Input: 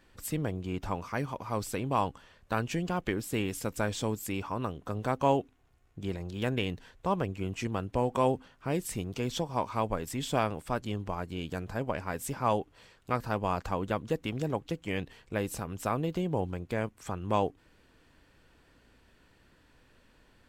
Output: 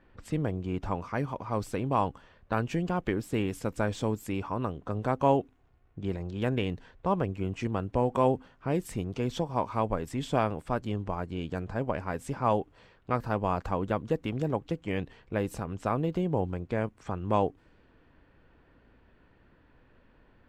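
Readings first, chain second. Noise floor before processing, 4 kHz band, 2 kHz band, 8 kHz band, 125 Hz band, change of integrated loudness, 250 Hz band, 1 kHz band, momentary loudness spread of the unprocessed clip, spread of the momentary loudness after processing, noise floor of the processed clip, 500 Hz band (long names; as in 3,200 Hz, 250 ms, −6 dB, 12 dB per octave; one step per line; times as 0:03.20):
−64 dBFS, −3.5 dB, −1.0 dB, −7.5 dB, +2.5 dB, +1.5 dB, +2.5 dB, +1.5 dB, 6 LU, 7 LU, −63 dBFS, +2.0 dB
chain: low-pass that shuts in the quiet parts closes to 2,900 Hz, open at −29.5 dBFS
high-shelf EQ 2,600 Hz −10 dB
level +2.5 dB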